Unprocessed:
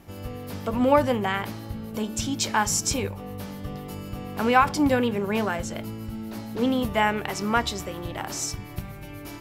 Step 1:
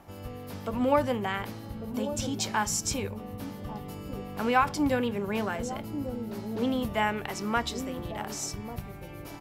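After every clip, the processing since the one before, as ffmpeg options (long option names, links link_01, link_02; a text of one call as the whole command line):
ffmpeg -i in.wav -filter_complex "[0:a]acrossover=split=800|930[link_01][link_02][link_03];[link_01]aecho=1:1:1146:0.398[link_04];[link_02]acompressor=mode=upward:threshold=-44dB:ratio=2.5[link_05];[link_04][link_05][link_03]amix=inputs=3:normalize=0,volume=-5dB" out.wav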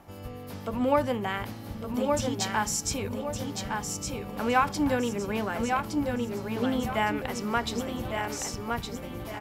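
ffmpeg -i in.wav -af "aecho=1:1:1163|2326|3489|4652:0.562|0.186|0.0612|0.0202" out.wav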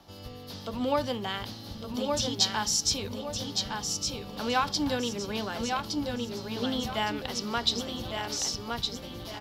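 ffmpeg -i in.wav -filter_complex "[0:a]acrossover=split=130|5000[link_01][link_02][link_03];[link_01]acrusher=samples=18:mix=1:aa=0.000001:lfo=1:lforange=10.8:lforate=0.46[link_04];[link_02]aexciter=amount=9.4:drive=5.3:freq=3400[link_05];[link_04][link_05][link_03]amix=inputs=3:normalize=0,volume=-3.5dB" out.wav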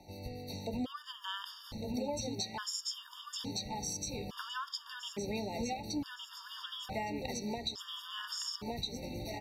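ffmpeg -i in.wav -af "acompressor=threshold=-32dB:ratio=10,afftfilt=real='re*gt(sin(2*PI*0.58*pts/sr)*(1-2*mod(floor(b*sr/1024/930),2)),0)':imag='im*gt(sin(2*PI*0.58*pts/sr)*(1-2*mod(floor(b*sr/1024/930),2)),0)':win_size=1024:overlap=0.75" out.wav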